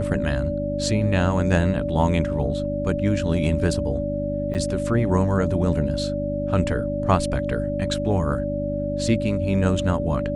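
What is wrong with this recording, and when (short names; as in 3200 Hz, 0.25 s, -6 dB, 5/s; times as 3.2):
hum 50 Hz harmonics 6 -28 dBFS
tone 580 Hz -26 dBFS
4.54–4.55 gap 8.6 ms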